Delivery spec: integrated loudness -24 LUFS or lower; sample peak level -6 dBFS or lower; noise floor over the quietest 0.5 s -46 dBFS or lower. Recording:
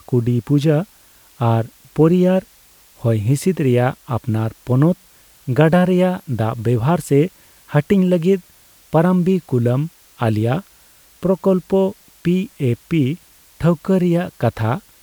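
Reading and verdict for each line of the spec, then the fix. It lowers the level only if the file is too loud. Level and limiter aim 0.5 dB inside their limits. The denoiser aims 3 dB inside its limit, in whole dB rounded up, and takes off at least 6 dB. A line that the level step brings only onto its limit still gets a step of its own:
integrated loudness -18.0 LUFS: fail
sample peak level -2.0 dBFS: fail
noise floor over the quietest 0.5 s -50 dBFS: pass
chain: trim -6.5 dB

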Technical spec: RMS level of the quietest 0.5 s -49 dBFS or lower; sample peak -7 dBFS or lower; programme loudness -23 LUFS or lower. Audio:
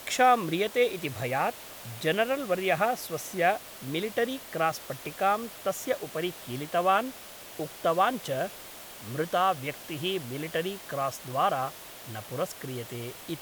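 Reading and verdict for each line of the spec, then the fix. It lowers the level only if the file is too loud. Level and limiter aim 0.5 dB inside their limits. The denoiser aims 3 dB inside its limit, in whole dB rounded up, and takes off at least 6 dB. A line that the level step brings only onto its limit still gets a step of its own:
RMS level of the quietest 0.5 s -45 dBFS: fail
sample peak -10.0 dBFS: pass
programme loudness -29.5 LUFS: pass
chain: noise reduction 7 dB, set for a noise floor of -45 dBFS

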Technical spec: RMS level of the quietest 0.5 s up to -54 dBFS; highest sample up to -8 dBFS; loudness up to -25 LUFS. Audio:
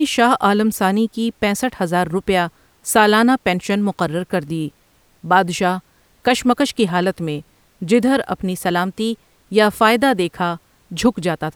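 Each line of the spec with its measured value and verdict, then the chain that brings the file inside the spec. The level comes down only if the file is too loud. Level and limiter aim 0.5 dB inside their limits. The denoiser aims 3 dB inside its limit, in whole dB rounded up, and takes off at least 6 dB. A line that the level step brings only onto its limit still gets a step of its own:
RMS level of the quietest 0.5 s -56 dBFS: pass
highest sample -2.0 dBFS: fail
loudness -18.0 LUFS: fail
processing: trim -7.5 dB

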